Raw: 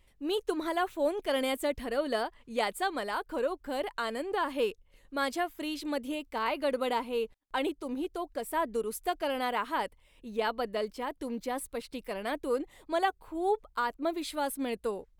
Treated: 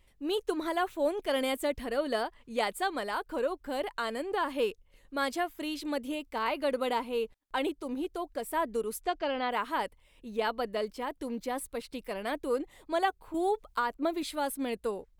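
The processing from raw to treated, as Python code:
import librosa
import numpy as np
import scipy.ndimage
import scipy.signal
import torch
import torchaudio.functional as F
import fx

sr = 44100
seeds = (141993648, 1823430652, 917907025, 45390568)

y = fx.lowpass(x, sr, hz=fx.line((9.01, 7000.0), (9.5, 4200.0)), slope=24, at=(9.01, 9.5), fade=0.02)
y = fx.band_squash(y, sr, depth_pct=70, at=(13.34, 14.23))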